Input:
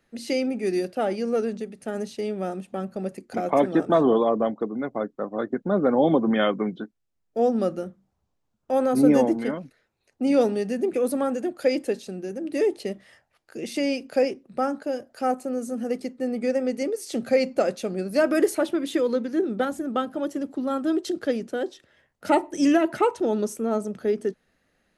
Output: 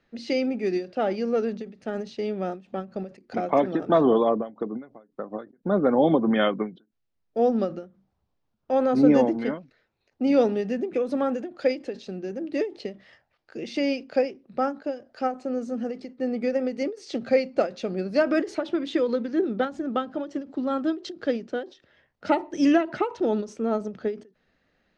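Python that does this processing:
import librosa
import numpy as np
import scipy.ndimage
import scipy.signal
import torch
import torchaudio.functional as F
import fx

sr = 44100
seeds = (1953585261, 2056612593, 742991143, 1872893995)

y = fx.notch(x, sr, hz=4500.0, q=12.0, at=(10.4, 11.56))
y = scipy.signal.sosfilt(scipy.signal.butter(4, 5300.0, 'lowpass', fs=sr, output='sos'), y)
y = fx.end_taper(y, sr, db_per_s=190.0)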